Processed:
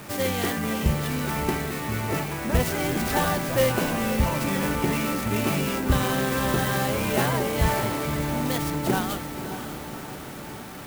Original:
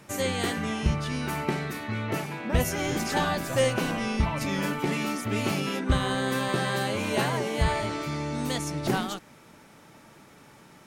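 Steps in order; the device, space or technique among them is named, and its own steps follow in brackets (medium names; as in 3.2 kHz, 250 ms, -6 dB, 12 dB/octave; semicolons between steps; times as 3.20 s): early CD player with a faulty converter (jump at every zero crossing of -39.5 dBFS; sampling jitter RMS 0.045 ms); echo that smears into a reverb 588 ms, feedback 60%, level -9.5 dB; trim +1.5 dB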